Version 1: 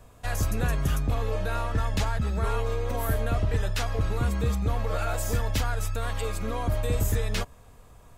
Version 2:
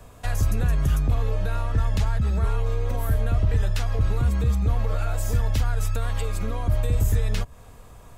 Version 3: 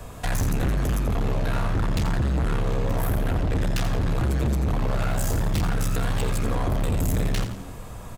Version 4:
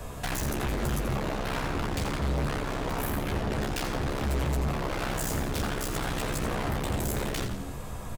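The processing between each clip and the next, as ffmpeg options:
-filter_complex "[0:a]acrossover=split=150[s0][s1];[s1]acompressor=threshold=0.0126:ratio=5[s2];[s0][s2]amix=inputs=2:normalize=0,volume=1.88"
-filter_complex "[0:a]volume=28.2,asoftclip=hard,volume=0.0355,asplit=5[s0][s1][s2][s3][s4];[s1]adelay=85,afreqshift=81,volume=0.335[s5];[s2]adelay=170,afreqshift=162,volume=0.138[s6];[s3]adelay=255,afreqshift=243,volume=0.0562[s7];[s4]adelay=340,afreqshift=324,volume=0.0232[s8];[s0][s5][s6][s7][s8]amix=inputs=5:normalize=0,volume=2.37"
-filter_complex "[0:a]aeval=exprs='0.0596*(abs(mod(val(0)/0.0596+3,4)-2)-1)':c=same,asplit=2[s0][s1];[s1]adelay=14,volume=0.473[s2];[s0][s2]amix=inputs=2:normalize=0"

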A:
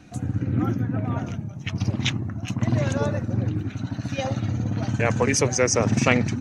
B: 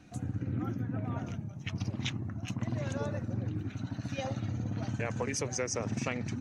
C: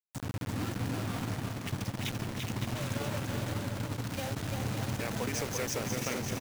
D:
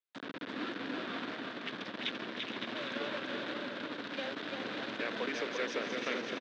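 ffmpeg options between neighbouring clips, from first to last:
-af "acompressor=threshold=0.0794:ratio=6,volume=0.422"
-filter_complex "[0:a]acrusher=bits=5:mix=0:aa=0.000001,asplit=2[s0][s1];[s1]aecho=0:1:340|561|704.6|798|858.7:0.631|0.398|0.251|0.158|0.1[s2];[s0][s2]amix=inputs=2:normalize=0,volume=0.75"
-af "highpass=f=260:w=0.5412,highpass=f=260:w=1.3066,equalizer=f=820:t=q:w=4:g=-7,equalizer=f=1600:t=q:w=4:g=5,equalizer=f=3600:t=q:w=4:g=6,lowpass=f=4000:w=0.5412,lowpass=f=4000:w=1.3066,aecho=1:1:471:0.266"

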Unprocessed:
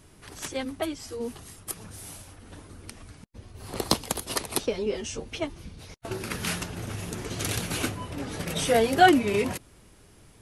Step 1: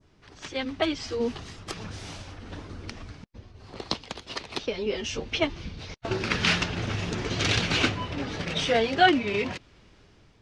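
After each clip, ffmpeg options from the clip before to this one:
-af "adynamicequalizer=threshold=0.00708:dfrequency=2800:dqfactor=0.7:tfrequency=2800:tqfactor=0.7:attack=5:release=100:ratio=0.375:range=3:mode=boostabove:tftype=bell,lowpass=f=5700:w=0.5412,lowpass=f=5700:w=1.3066,dynaudnorm=f=200:g=7:m=4.22,volume=0.473"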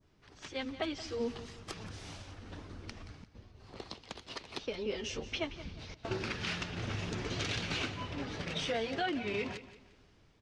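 -af "alimiter=limit=0.141:level=0:latency=1:release=218,aecho=1:1:176|352|528:0.188|0.0603|0.0193,volume=0.422"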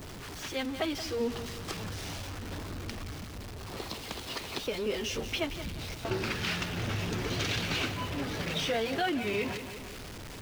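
-af "aeval=exprs='val(0)+0.5*0.00944*sgn(val(0))':c=same,volume=1.33"

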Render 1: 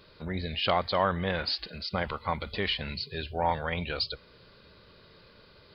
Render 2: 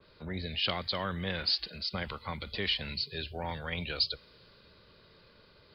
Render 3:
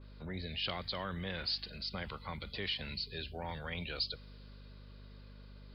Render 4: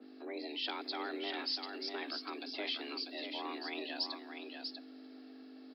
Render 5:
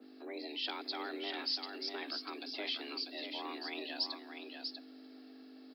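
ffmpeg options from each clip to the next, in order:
-filter_complex "[0:a]acrossover=split=150|460|1300[s0][s1][s2][s3];[s2]acompressor=threshold=0.01:ratio=6[s4];[s0][s1][s4][s3]amix=inputs=4:normalize=0,adynamicequalizer=threshold=0.00631:dfrequency=2800:dqfactor=0.7:tfrequency=2800:tqfactor=0.7:attack=5:release=100:ratio=0.375:range=3.5:mode=boostabove:tftype=highshelf,volume=0.631"
-filter_complex "[0:a]aeval=exprs='val(0)+0.00398*(sin(2*PI*50*n/s)+sin(2*PI*2*50*n/s)/2+sin(2*PI*3*50*n/s)/3+sin(2*PI*4*50*n/s)/4+sin(2*PI*5*50*n/s)/5)':c=same,asplit=2[s0][s1];[s1]alimiter=level_in=1.78:limit=0.0631:level=0:latency=1:release=38,volume=0.562,volume=0.891[s2];[s0][s2]amix=inputs=2:normalize=0,volume=0.355"
-af "afreqshift=210,aecho=1:1:643:0.501,volume=0.841"
-af "crystalizer=i=1:c=0,volume=0.841"

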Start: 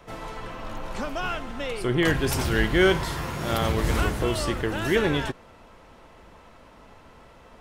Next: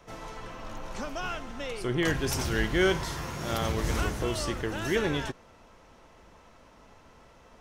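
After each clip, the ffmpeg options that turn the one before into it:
-af "equalizer=f=6000:t=o:w=0.47:g=7,volume=0.562"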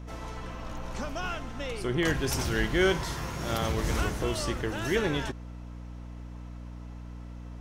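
-af "aeval=exprs='val(0)+0.01*(sin(2*PI*60*n/s)+sin(2*PI*2*60*n/s)/2+sin(2*PI*3*60*n/s)/3+sin(2*PI*4*60*n/s)/4+sin(2*PI*5*60*n/s)/5)':c=same"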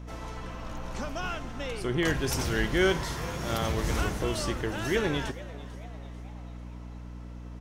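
-filter_complex "[0:a]asplit=5[s0][s1][s2][s3][s4];[s1]adelay=444,afreqshift=130,volume=0.119[s5];[s2]adelay=888,afreqshift=260,volume=0.061[s6];[s3]adelay=1332,afreqshift=390,volume=0.0309[s7];[s4]adelay=1776,afreqshift=520,volume=0.0158[s8];[s0][s5][s6][s7][s8]amix=inputs=5:normalize=0"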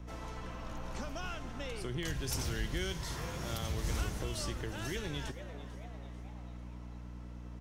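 -filter_complex "[0:a]acrossover=split=150|3000[s0][s1][s2];[s1]acompressor=threshold=0.0178:ratio=6[s3];[s0][s3][s2]amix=inputs=3:normalize=0,volume=0.596"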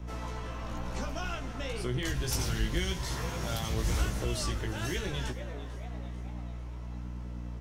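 -af "flanger=delay=15.5:depth=3.4:speed=0.97,volume=2.37"

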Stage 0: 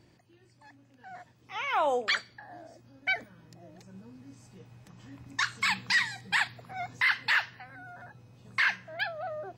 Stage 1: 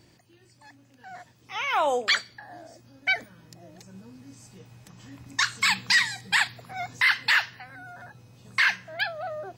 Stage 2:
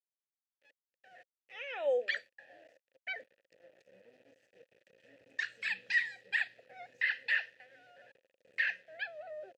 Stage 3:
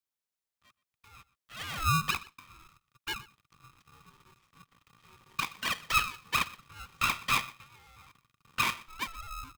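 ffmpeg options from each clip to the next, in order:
-af "highshelf=f=3700:g=8.5,volume=1.33"
-filter_complex "[0:a]aeval=exprs='val(0)*gte(abs(val(0)),0.00562)':c=same,asplit=3[s0][s1][s2];[s0]bandpass=f=530:t=q:w=8,volume=1[s3];[s1]bandpass=f=1840:t=q:w=8,volume=0.501[s4];[s2]bandpass=f=2480:t=q:w=8,volume=0.355[s5];[s3][s4][s5]amix=inputs=3:normalize=0"
-af "aecho=1:1:123:0.0944,aeval=exprs='val(0)*sgn(sin(2*PI*650*n/s))':c=same,volume=1.5"

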